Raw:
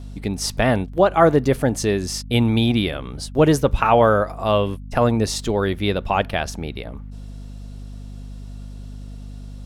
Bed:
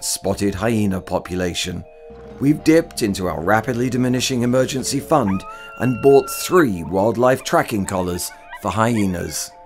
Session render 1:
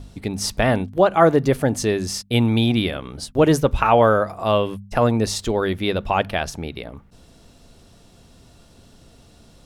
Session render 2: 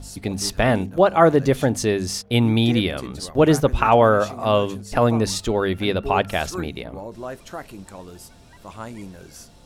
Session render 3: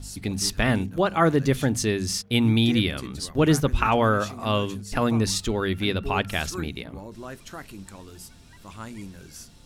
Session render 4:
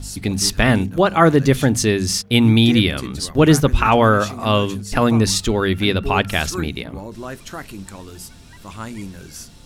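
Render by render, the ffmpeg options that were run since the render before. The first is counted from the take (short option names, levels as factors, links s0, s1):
-af "bandreject=f=50:t=h:w=4,bandreject=f=100:t=h:w=4,bandreject=f=150:t=h:w=4,bandreject=f=200:t=h:w=4,bandreject=f=250:t=h:w=4"
-filter_complex "[1:a]volume=0.126[s0];[0:a][s0]amix=inputs=2:normalize=0"
-af "equalizer=f=630:w=0.95:g=-9.5,bandreject=f=60:t=h:w=6,bandreject=f=120:t=h:w=6,bandreject=f=180:t=h:w=6"
-af "volume=2.24,alimiter=limit=0.891:level=0:latency=1"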